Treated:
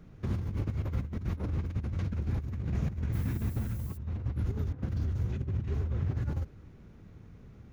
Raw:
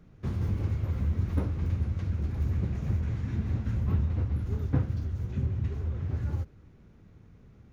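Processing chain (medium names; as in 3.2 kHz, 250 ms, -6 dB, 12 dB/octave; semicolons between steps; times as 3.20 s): compressor with a negative ratio -31 dBFS, ratio -0.5; 3.12–3.96 s: added noise violet -53 dBFS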